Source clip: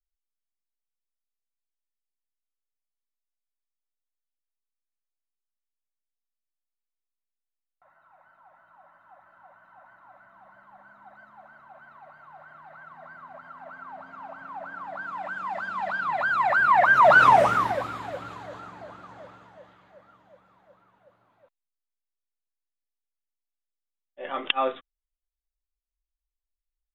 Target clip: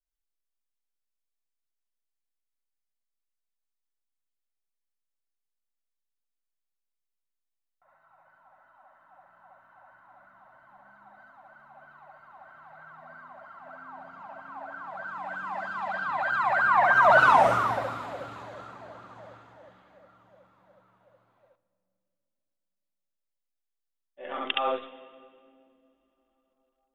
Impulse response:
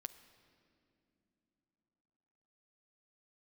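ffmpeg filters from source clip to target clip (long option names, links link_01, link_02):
-filter_complex "[0:a]asplit=2[link_01][link_02];[1:a]atrim=start_sample=2205,adelay=69[link_03];[link_02][link_03]afir=irnorm=-1:irlink=0,volume=4.5dB[link_04];[link_01][link_04]amix=inputs=2:normalize=0,volume=-5.5dB"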